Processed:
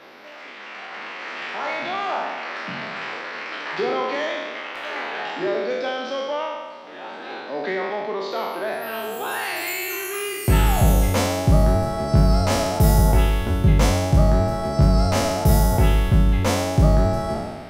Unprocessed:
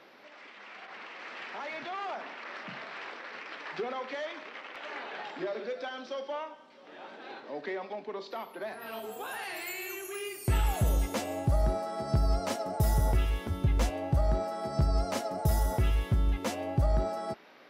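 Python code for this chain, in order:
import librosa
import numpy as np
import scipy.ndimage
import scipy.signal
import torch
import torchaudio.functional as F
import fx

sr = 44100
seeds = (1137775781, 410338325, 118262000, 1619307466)

y = fx.spec_trails(x, sr, decay_s=1.45)
y = F.gain(torch.from_numpy(y), 8.0).numpy()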